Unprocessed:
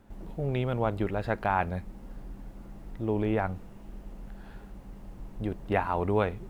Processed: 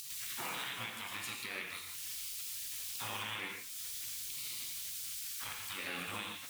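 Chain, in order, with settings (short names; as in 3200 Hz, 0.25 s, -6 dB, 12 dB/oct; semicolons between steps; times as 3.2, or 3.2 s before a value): HPF 670 Hz 12 dB/oct; spectral gate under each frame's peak -20 dB weak; high shelf 3800 Hz +9.5 dB; upward compressor, threshold -34 dBFS; limiter -34 dBFS, peak gain reduction 11 dB; non-linear reverb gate 0.19 s flat, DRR 0.5 dB; gain +3.5 dB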